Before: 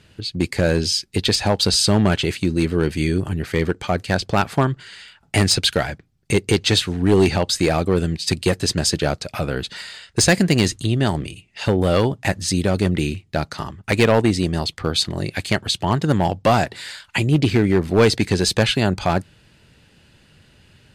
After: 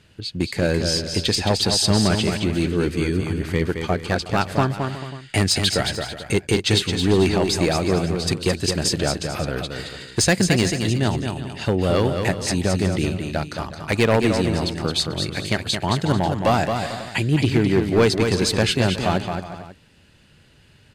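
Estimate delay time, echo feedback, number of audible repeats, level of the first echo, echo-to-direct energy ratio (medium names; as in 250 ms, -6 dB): 219 ms, no regular repeats, 4, -6.0 dB, -5.0 dB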